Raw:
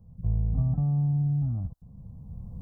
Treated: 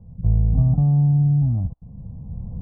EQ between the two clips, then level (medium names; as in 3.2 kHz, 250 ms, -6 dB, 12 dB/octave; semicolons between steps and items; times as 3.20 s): low-pass 1 kHz 24 dB/octave; +8.5 dB